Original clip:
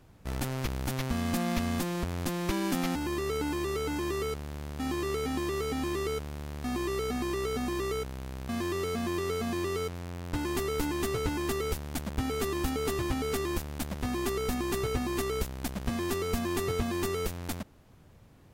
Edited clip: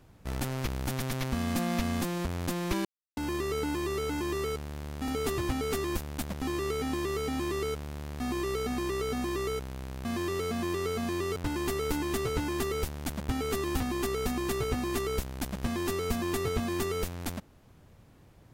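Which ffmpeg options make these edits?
ffmpeg -i in.wav -filter_complex "[0:a]asplit=9[link_01][link_02][link_03][link_04][link_05][link_06][link_07][link_08][link_09];[link_01]atrim=end=1.002[link_10];[link_02]atrim=start=0.888:end=1.002[link_11];[link_03]atrim=start=0.888:end=2.63,asetpts=PTS-STARTPTS,afade=type=out:start_time=1.738:duration=0.004:curve=hsin[link_12];[link_04]atrim=start=2.63:end=2.95,asetpts=PTS-STARTPTS,volume=0[link_13];[link_05]atrim=start=2.95:end=4.862,asetpts=PTS-STARTPTS,afade=type=in:duration=0.004:curve=hsin[link_14];[link_06]atrim=start=12.688:end=14.032[link_15];[link_07]atrim=start=4.858:end=9.802[link_16];[link_08]atrim=start=10.248:end=12.692[link_17];[link_09]atrim=start=14.028[link_18];[link_10][link_11]acrossfade=duration=0.004:curve1=hsin:curve2=hsin[link_19];[link_12][link_13][link_14]concat=n=3:v=0:a=1[link_20];[link_19][link_20]acrossfade=duration=0.004:curve1=hsin:curve2=hsin[link_21];[link_21][link_15]acrossfade=duration=0.004:curve1=hsin:curve2=hsin[link_22];[link_22][link_16]acrossfade=duration=0.004:curve1=hsin:curve2=hsin[link_23];[link_23][link_17]acrossfade=duration=0.004:curve1=hsin:curve2=hsin[link_24];[link_24][link_18]acrossfade=duration=0.004:curve1=hsin:curve2=hsin" out.wav

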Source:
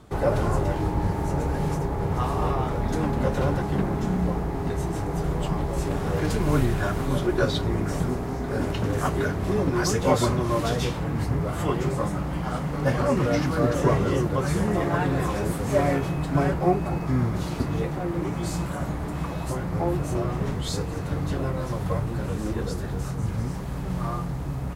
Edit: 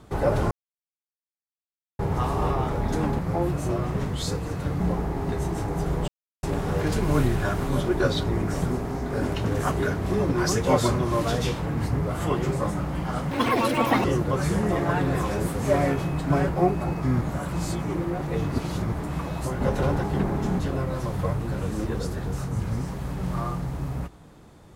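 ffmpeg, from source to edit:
ffmpeg -i in.wav -filter_complex "[0:a]asplit=13[link_01][link_02][link_03][link_04][link_05][link_06][link_07][link_08][link_09][link_10][link_11][link_12][link_13];[link_01]atrim=end=0.51,asetpts=PTS-STARTPTS,afade=type=out:start_time=0.506:duration=0.004:curve=hsin[link_14];[link_02]atrim=start=0.51:end=1.99,asetpts=PTS-STARTPTS,volume=0[link_15];[link_03]atrim=start=1.99:end=3.192,asetpts=PTS-STARTPTS,afade=type=in:duration=0.004:curve=hsin[link_16];[link_04]atrim=start=19.648:end=21.262[link_17];[link_05]atrim=start=4.178:end=5.46,asetpts=PTS-STARTPTS,afade=type=out:start_time=1.278:duration=0.004:curve=hsin[link_18];[link_06]atrim=start=5.46:end=5.81,asetpts=PTS-STARTPTS,volume=0[link_19];[link_07]atrim=start=5.81:end=12.694,asetpts=PTS-STARTPTS,afade=type=in:duration=0.004:curve=hsin[link_20];[link_08]atrim=start=12.69:end=14.09,asetpts=PTS-STARTPTS,asetrate=84231,aresample=44100[link_21];[link_09]atrim=start=14.086:end=17.262[link_22];[link_10]atrim=start=17.258:end=18.972,asetpts=PTS-STARTPTS,areverse[link_23];[link_11]atrim=start=18.968:end=19.652[link_24];[link_12]atrim=start=3.188:end=4.182[link_25];[link_13]atrim=start=21.258[link_26];[link_14][link_15][link_16]concat=n=3:v=0:a=1[link_27];[link_27][link_17]acrossfade=duration=0.004:curve1=hsin:curve2=hsin[link_28];[link_18][link_19][link_20]concat=n=3:v=0:a=1[link_29];[link_28][link_29]acrossfade=duration=0.004:curve1=hsin:curve2=hsin[link_30];[link_30][link_21]acrossfade=duration=0.004:curve1=hsin:curve2=hsin[link_31];[link_31][link_22]acrossfade=duration=0.004:curve1=hsin:curve2=hsin[link_32];[link_32][link_23]acrossfade=duration=0.004:curve1=hsin:curve2=hsin[link_33];[link_33][link_24]acrossfade=duration=0.004:curve1=hsin:curve2=hsin[link_34];[link_34][link_25]acrossfade=duration=0.004:curve1=hsin:curve2=hsin[link_35];[link_35][link_26]acrossfade=duration=0.004:curve1=hsin:curve2=hsin" out.wav

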